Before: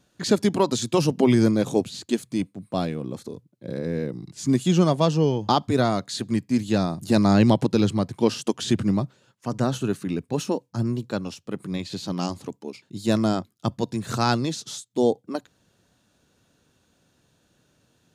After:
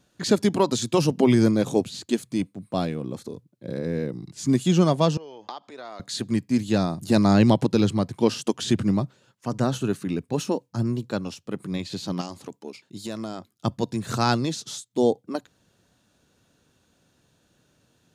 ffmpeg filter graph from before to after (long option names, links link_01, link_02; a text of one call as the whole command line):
ffmpeg -i in.wav -filter_complex "[0:a]asettb=1/sr,asplit=3[link_01][link_02][link_03];[link_01]atrim=end=5.174[link_04];[link_02]atrim=start=5.17:end=6,asetpts=PTS-STARTPTS,afade=type=in:duration=0.004:curve=qsin,afade=type=out:start_time=0.826:duration=0.004:curve=qsin,acompressor=threshold=-30dB:ratio=8:attack=3.2:release=140:knee=1:detection=peak,highpass=530,lowpass=5300[link_05];[link_03]atrim=start=5.996[link_06];[link_04][link_05]acrossfade=duration=0.004:curve1=hsin:curve2=qsin[link_07];[link_07][link_06]acrossfade=duration=0.004:curve1=qsin:curve2=hsin,asettb=1/sr,asplit=3[link_08][link_09][link_10];[link_08]atrim=end=12.214[link_11];[link_09]atrim=start=12.21:end=13.53,asetpts=PTS-STARTPTS,afade=type=in:duration=0.004:curve=qsin,afade=type=out:start_time=1.316:duration=0.004:curve=qsin,lowshelf=frequency=210:gain=-8,acompressor=threshold=-29dB:ratio=4:attack=3.2:release=140:knee=1:detection=peak[link_12];[link_10]atrim=start=13.526[link_13];[link_11][link_12]acrossfade=duration=0.004:curve1=hsin:curve2=qsin[link_14];[link_14][link_13]acrossfade=duration=0.004:curve1=qsin:curve2=hsin" out.wav